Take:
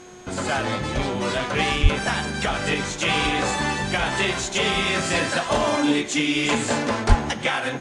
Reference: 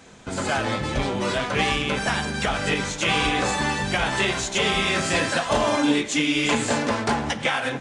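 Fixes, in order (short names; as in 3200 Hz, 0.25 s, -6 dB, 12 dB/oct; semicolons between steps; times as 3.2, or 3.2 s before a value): de-hum 363.4 Hz, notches 34; notch 6500 Hz, Q 30; 1.82–1.94 HPF 140 Hz 24 dB/oct; 7.08–7.2 HPF 140 Hz 24 dB/oct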